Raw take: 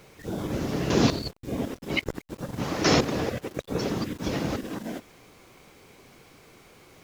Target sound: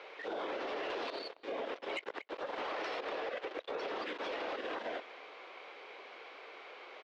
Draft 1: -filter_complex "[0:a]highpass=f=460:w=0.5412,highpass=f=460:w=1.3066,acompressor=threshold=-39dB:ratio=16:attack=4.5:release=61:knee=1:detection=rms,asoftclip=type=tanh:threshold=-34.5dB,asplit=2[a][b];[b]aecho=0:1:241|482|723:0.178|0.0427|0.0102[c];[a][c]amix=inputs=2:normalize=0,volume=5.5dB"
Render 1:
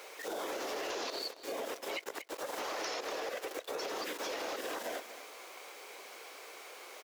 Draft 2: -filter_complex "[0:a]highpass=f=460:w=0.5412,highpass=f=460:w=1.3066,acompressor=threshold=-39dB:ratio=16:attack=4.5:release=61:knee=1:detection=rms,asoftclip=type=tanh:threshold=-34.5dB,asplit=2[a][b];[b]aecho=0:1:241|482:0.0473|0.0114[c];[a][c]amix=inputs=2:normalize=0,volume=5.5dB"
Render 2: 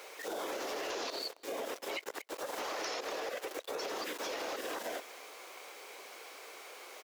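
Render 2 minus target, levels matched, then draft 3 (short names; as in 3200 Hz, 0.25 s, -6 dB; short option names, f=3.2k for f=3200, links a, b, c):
4000 Hz band +3.0 dB
-filter_complex "[0:a]highpass=f=460:w=0.5412,highpass=f=460:w=1.3066,acompressor=threshold=-39dB:ratio=16:attack=4.5:release=61:knee=1:detection=rms,lowpass=f=3.6k:w=0.5412,lowpass=f=3.6k:w=1.3066,asoftclip=type=tanh:threshold=-34.5dB,asplit=2[a][b];[b]aecho=0:1:241|482:0.0473|0.0114[c];[a][c]amix=inputs=2:normalize=0,volume=5.5dB"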